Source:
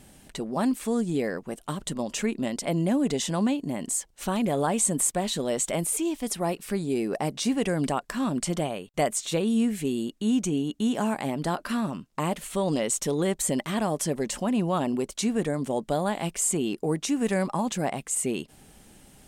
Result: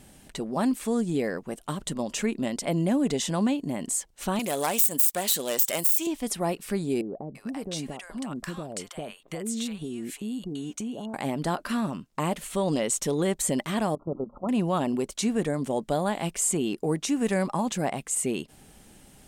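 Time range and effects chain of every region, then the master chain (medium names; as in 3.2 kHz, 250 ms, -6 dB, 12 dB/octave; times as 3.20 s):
4.39–6.07 s: self-modulated delay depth 0.1 ms + RIAA curve recording + compression 8:1, threshold -16 dBFS
7.01–11.14 s: compression, threshold -30 dBFS + bands offset in time lows, highs 340 ms, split 830 Hz
13.95–14.49 s: hum notches 60/120/180/240/300 Hz + level held to a coarse grid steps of 14 dB + brick-wall FIR low-pass 1.4 kHz
whole clip: none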